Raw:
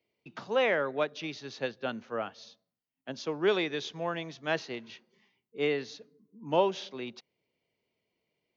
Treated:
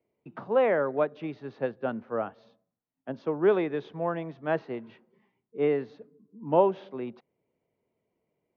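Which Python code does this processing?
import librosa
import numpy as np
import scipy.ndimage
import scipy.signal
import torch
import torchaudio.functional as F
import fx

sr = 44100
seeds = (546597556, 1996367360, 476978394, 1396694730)

y = scipy.signal.sosfilt(scipy.signal.butter(2, 1200.0, 'lowpass', fs=sr, output='sos'), x)
y = y * 10.0 ** (4.5 / 20.0)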